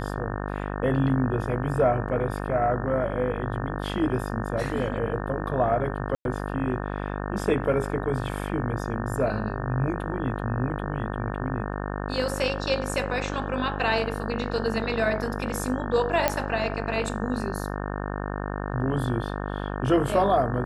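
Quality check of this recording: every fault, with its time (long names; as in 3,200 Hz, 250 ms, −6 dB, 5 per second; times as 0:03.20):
mains buzz 50 Hz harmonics 36 −31 dBFS
0:06.15–0:06.25: drop-out 102 ms
0:16.28: click −6 dBFS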